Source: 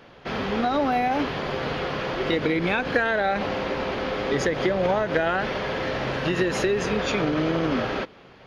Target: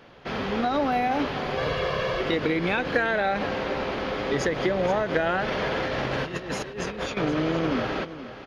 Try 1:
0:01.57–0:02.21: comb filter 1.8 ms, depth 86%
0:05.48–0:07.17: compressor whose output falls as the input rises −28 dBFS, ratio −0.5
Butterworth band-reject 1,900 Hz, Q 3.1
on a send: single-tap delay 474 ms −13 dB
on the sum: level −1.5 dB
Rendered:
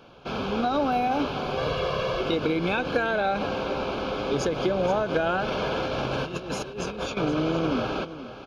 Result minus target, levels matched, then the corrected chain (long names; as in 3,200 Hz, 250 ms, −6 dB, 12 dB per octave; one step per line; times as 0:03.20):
2,000 Hz band −3.0 dB
0:01.57–0:02.21: comb filter 1.8 ms, depth 86%
0:05.48–0:07.17: compressor whose output falls as the input rises −28 dBFS, ratio −0.5
on a send: single-tap delay 474 ms −13 dB
on the sum: level −1.5 dB